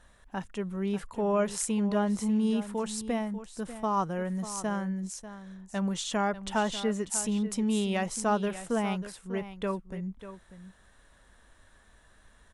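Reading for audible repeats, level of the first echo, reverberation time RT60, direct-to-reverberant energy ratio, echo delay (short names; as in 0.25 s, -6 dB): 1, -13.0 dB, none, none, 0.593 s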